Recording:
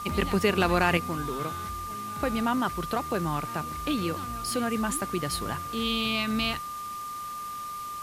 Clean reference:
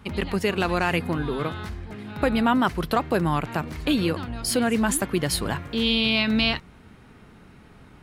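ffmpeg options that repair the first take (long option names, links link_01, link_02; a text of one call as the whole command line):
ffmpeg -i in.wav -af "bandreject=frequency=1200:width=30,afwtdn=0.005,asetnsamples=nb_out_samples=441:pad=0,asendcmd='0.97 volume volume 6.5dB',volume=0dB" out.wav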